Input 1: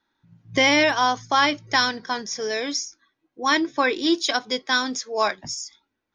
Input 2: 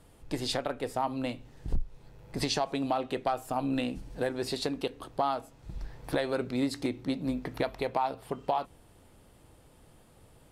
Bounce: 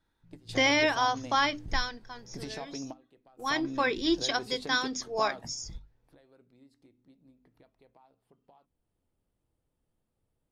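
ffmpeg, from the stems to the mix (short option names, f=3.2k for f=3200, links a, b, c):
-filter_complex "[0:a]volume=5dB,afade=t=out:st=1.35:d=0.74:silence=0.266073,afade=t=in:st=3.06:d=0.79:silence=0.266073,asplit=2[a][b];[1:a]equalizer=f=240:w=0.7:g=4.5,acompressor=threshold=-42dB:ratio=1.5,volume=-6dB[c];[b]apad=whole_len=463907[d];[c][d]sidechaingate=range=-21dB:threshold=-54dB:ratio=16:detection=peak[e];[a][e]amix=inputs=2:normalize=0,lowshelf=f=85:g=9,bandreject=f=50:t=h:w=6,bandreject=f=100:t=h:w=6,bandreject=f=150:t=h:w=6,bandreject=f=200:t=h:w=6,bandreject=f=250:t=h:w=6,bandreject=f=300:t=h:w=6"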